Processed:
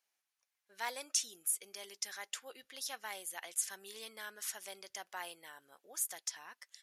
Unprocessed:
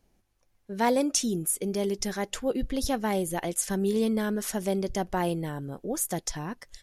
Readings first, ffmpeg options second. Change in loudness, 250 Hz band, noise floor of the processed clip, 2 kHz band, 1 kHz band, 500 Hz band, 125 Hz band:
−11.0 dB, −36.0 dB, below −85 dBFS, −7.5 dB, −15.0 dB, −24.0 dB, below −40 dB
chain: -af "highpass=1400,volume=-6dB"

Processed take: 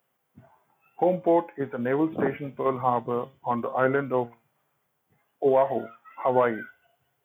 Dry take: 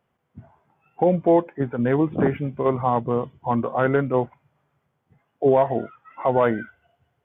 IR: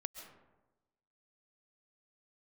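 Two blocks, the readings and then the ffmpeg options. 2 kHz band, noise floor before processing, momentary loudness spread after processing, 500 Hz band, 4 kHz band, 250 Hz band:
−2.0 dB, −74 dBFS, 10 LU, −3.5 dB, can't be measured, −5.5 dB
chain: -filter_complex "[0:a]flanger=delay=7.4:depth=2.2:regen=81:speed=0.29:shape=sinusoidal,aemphasis=mode=production:type=bsi,acrossover=split=2700[link_01][link_02];[link_02]acompressor=threshold=-59dB:ratio=4:attack=1:release=60[link_03];[link_01][link_03]amix=inputs=2:normalize=0,volume=2.5dB"

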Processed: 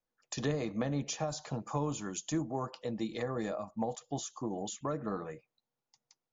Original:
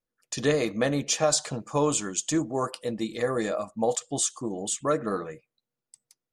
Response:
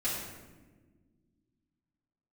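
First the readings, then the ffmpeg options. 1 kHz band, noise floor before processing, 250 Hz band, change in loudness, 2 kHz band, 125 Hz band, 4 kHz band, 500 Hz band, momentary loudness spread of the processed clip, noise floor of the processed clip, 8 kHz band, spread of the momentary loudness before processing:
−8.0 dB, below −85 dBFS, −6.5 dB, −9.5 dB, −11.5 dB, −3.5 dB, −11.5 dB, −10.5 dB, 6 LU, below −85 dBFS, −14.0 dB, 8 LU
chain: -filter_complex "[0:a]equalizer=frequency=850:width_type=o:width=0.82:gain=8.5,acrossover=split=250[link_01][link_02];[link_02]acompressor=threshold=-34dB:ratio=4[link_03];[link_01][link_03]amix=inputs=2:normalize=0,volume=-2.5dB" -ar 16000 -c:a libmp3lame -b:a 96k

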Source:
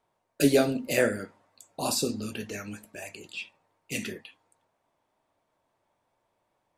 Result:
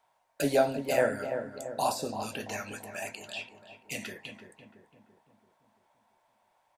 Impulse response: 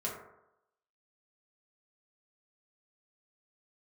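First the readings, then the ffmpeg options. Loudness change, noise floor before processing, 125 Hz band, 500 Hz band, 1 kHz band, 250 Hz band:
−3.5 dB, −77 dBFS, −5.5 dB, −1.0 dB, +5.0 dB, −7.0 dB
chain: -filter_complex "[0:a]lowshelf=frequency=540:width_type=q:width=1.5:gain=-10.5,bandreject=frequency=1200:width=9.5,acrossover=split=1200[link_01][link_02];[link_02]acompressor=threshold=-42dB:ratio=6[link_03];[link_01][link_03]amix=inputs=2:normalize=0,asplit=2[link_04][link_05];[link_05]adelay=338,lowpass=frequency=1200:poles=1,volume=-7dB,asplit=2[link_06][link_07];[link_07]adelay=338,lowpass=frequency=1200:poles=1,volume=0.54,asplit=2[link_08][link_09];[link_09]adelay=338,lowpass=frequency=1200:poles=1,volume=0.54,asplit=2[link_10][link_11];[link_11]adelay=338,lowpass=frequency=1200:poles=1,volume=0.54,asplit=2[link_12][link_13];[link_13]adelay=338,lowpass=frequency=1200:poles=1,volume=0.54,asplit=2[link_14][link_15];[link_15]adelay=338,lowpass=frequency=1200:poles=1,volume=0.54,asplit=2[link_16][link_17];[link_17]adelay=338,lowpass=frequency=1200:poles=1,volume=0.54[link_18];[link_04][link_06][link_08][link_10][link_12][link_14][link_16][link_18]amix=inputs=8:normalize=0,volume=4.5dB"

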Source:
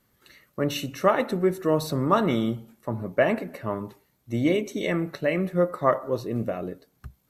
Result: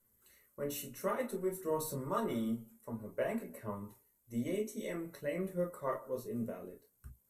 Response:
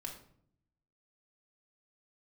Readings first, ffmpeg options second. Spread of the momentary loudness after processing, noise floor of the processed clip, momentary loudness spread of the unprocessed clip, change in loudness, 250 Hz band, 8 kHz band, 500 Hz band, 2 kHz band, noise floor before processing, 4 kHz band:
10 LU, −74 dBFS, 11 LU, −13.0 dB, −12.5 dB, −4.5 dB, −12.5 dB, −16.0 dB, −68 dBFS, −16.5 dB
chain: -filter_complex "[0:a]highshelf=frequency=6300:width_type=q:width=1.5:gain=13[link_01];[1:a]atrim=start_sample=2205,afade=type=out:start_time=0.14:duration=0.01,atrim=end_sample=6615,asetrate=70560,aresample=44100[link_02];[link_01][link_02]afir=irnorm=-1:irlink=0,aphaser=in_gain=1:out_gain=1:delay=4.9:decay=0.28:speed=0.55:type=sinusoidal,volume=-8dB"

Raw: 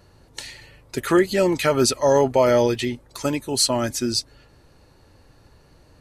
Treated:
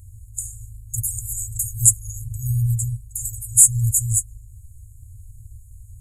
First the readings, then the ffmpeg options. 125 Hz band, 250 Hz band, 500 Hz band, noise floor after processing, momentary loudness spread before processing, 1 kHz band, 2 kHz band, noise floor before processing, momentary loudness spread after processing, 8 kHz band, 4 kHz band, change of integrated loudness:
+8.5 dB, below −15 dB, below −40 dB, −44 dBFS, 19 LU, below −40 dB, below −40 dB, −55 dBFS, 18 LU, +11.5 dB, below −40 dB, +1.5 dB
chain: -af "afftfilt=real='re*(1-between(b*sr/4096,120,6600))':imag='im*(1-between(b*sr/4096,120,6600))':win_size=4096:overlap=0.75,apsyclip=15.5dB,volume=-1.5dB"

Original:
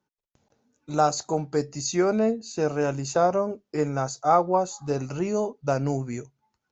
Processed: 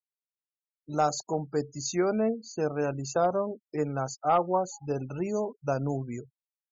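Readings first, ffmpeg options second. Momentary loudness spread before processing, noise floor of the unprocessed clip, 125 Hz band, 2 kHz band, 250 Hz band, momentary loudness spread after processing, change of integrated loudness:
8 LU, −82 dBFS, −4.0 dB, −4.5 dB, −4.0 dB, 8 LU, −4.0 dB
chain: -af "volume=11.5dB,asoftclip=hard,volume=-11.5dB,afftfilt=real='re*gte(hypot(re,im),0.0158)':imag='im*gte(hypot(re,im),0.0158)':win_size=1024:overlap=0.75,volume=-4dB"

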